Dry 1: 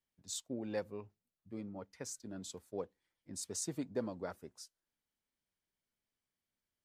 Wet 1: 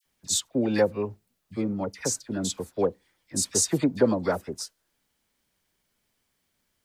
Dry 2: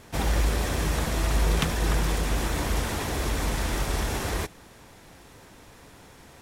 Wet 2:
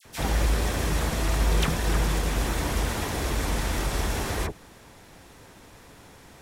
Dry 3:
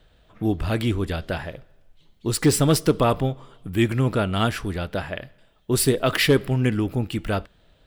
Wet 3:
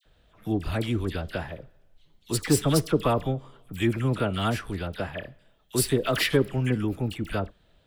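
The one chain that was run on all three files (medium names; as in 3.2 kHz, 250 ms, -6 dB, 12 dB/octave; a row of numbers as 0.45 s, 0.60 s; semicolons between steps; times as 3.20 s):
phase dispersion lows, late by 55 ms, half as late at 1.5 kHz; normalise loudness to -27 LUFS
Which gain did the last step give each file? +16.5 dB, +0.5 dB, -4.0 dB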